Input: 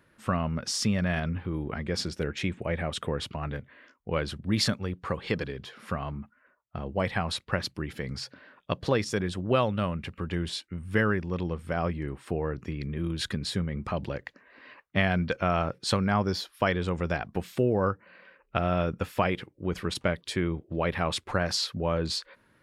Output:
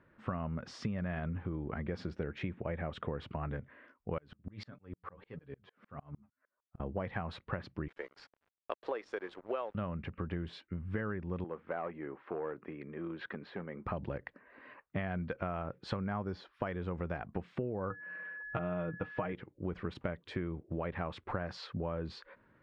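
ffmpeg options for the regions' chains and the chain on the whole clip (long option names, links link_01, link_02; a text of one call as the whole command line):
ffmpeg -i in.wav -filter_complex "[0:a]asettb=1/sr,asplit=3[link_01][link_02][link_03];[link_01]atrim=end=4.184[link_04];[link_02]atrim=start=4.18:end=6.8,asetpts=PTS-STARTPTS,afade=type=in:duration=0.004:curve=qsin,afade=type=out:start_time=2.616:duration=0.004:curve=qsin,flanger=delay=6.6:depth=4.6:regen=33:speed=1.6:shape=sinusoidal,aeval=exprs='val(0)*pow(10,-34*if(lt(mod(-6.6*n/s,1),2*abs(-6.6)/1000),1-mod(-6.6*n/s,1)/(2*abs(-6.6)/1000),(mod(-6.6*n/s,1)-2*abs(-6.6)/1000)/(1-2*abs(-6.6)/1000))/20)':channel_layout=same[link_05];[link_03]atrim=start=6.796[link_06];[link_04][link_05]acrossfade=duration=0.004:curve1=hsin:curve2=qsin[link_07];[link_07][link_06]acrossfade=duration=0.004:curve1=qsin:curve2=hsin,asettb=1/sr,asplit=3[link_08][link_09][link_10];[link_08]atrim=end=7.884[link_11];[link_09]atrim=start=7.88:end=9.75,asetpts=PTS-STARTPTS,afade=type=in:duration=0.004:curve=qsin,afade=type=out:start_time=1.866:duration=0.004:curve=qsin,highpass=frequency=380:width=0.5412,highpass=frequency=380:width=1.3066,aeval=exprs='sgn(val(0))*max(abs(val(0))-0.00501,0)':channel_layout=same[link_12];[link_10]atrim=start=9.746[link_13];[link_11][link_12]acrossfade=duration=0.004:curve1=hsin:curve2=qsin[link_14];[link_14][link_13]acrossfade=duration=0.004:curve1=qsin:curve2=hsin,asettb=1/sr,asplit=3[link_15][link_16][link_17];[link_15]atrim=end=11.444[link_18];[link_16]atrim=start=11.44:end=13.86,asetpts=PTS-STARTPTS,afade=type=in:duration=0.004:curve=qsin,afade=type=out:start_time=2.416:duration=0.004:curve=qsin,volume=22.5dB,asoftclip=hard,volume=-22.5dB,highpass=370,lowpass=2500[link_19];[link_17]atrim=start=13.856[link_20];[link_18][link_19]acrossfade=duration=0.004:curve1=hsin:curve2=qsin[link_21];[link_21][link_20]acrossfade=duration=0.004:curve1=qsin:curve2=hsin,asettb=1/sr,asplit=3[link_22][link_23][link_24];[link_22]atrim=end=17.904[link_25];[link_23]atrim=start=17.9:end=19.33,asetpts=PTS-STARTPTS,afade=type=in:duration=0.004:curve=qsin,afade=type=out:start_time=1.426:duration=0.004:curve=qsin,lowpass=4500,aecho=1:1:6.4:0.7,atrim=end_sample=63063,aeval=exprs='val(0)+0.0126*sin(2*PI*1700*n/s)':channel_layout=same[link_26];[link_24]atrim=start=19.326[link_27];[link_25][link_26]acrossfade=duration=0.004:curve1=hsin:curve2=qsin[link_28];[link_28][link_27]acrossfade=duration=0.004:curve1=qsin:curve2=hsin,lowpass=1800,acompressor=threshold=-32dB:ratio=6,volume=-1.5dB" out.wav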